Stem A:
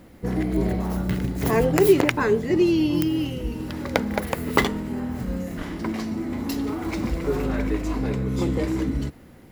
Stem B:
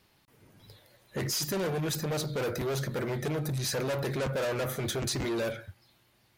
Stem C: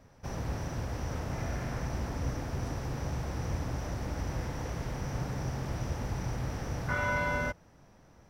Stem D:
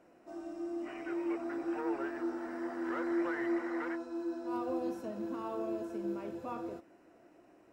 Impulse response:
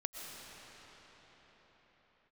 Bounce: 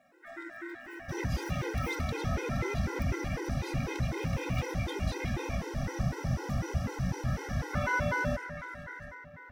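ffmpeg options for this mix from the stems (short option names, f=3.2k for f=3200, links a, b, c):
-filter_complex "[0:a]aeval=exprs='val(0)*sin(2*PI*1700*n/s)':c=same,volume=-20dB,asplit=2[a][b];[b]volume=-8dB[c];[1:a]aecho=1:1:2.5:0.38,aeval=exprs='val(0)*gte(abs(val(0)),0.00158)':c=same,firequalizer=gain_entry='entry(500,0);entry(1300,-25);entry(2100,13);entry(5600,-11)':delay=0.05:min_phase=1,volume=-10dB,asplit=2[d][e];[e]volume=-10dB[f];[2:a]adynamicequalizer=threshold=0.002:dfrequency=190:dqfactor=3.4:tfrequency=190:tqfactor=3.4:attack=5:release=100:ratio=0.375:range=3:mode=boostabove:tftype=bell,adelay=850,volume=1dB,asplit=2[g][h];[h]volume=-8dB[i];[3:a]lowshelf=f=180:g=-10.5,acompressor=threshold=-44dB:ratio=3,volume=1.5dB,asplit=2[j][k];[k]volume=-11.5dB[l];[4:a]atrim=start_sample=2205[m];[c][f][i][l]amix=inputs=4:normalize=0[n];[n][m]afir=irnorm=-1:irlink=0[o];[a][d][g][j][o]amix=inputs=5:normalize=0,afftfilt=real='re*gt(sin(2*PI*4*pts/sr)*(1-2*mod(floor(b*sr/1024/270),2)),0)':imag='im*gt(sin(2*PI*4*pts/sr)*(1-2*mod(floor(b*sr/1024/270),2)),0)':win_size=1024:overlap=0.75"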